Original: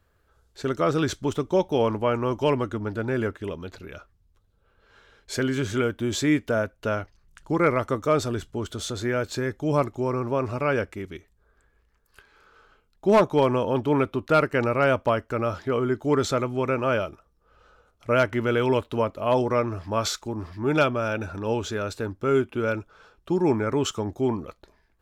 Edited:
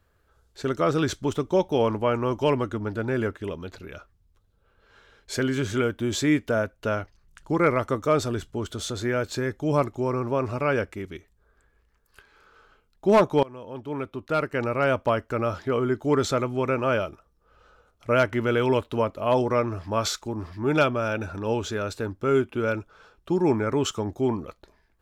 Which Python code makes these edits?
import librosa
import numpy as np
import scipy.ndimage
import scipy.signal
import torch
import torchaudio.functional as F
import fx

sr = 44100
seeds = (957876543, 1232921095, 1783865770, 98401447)

y = fx.edit(x, sr, fx.fade_in_from(start_s=13.43, length_s=1.79, floor_db=-23.5), tone=tone)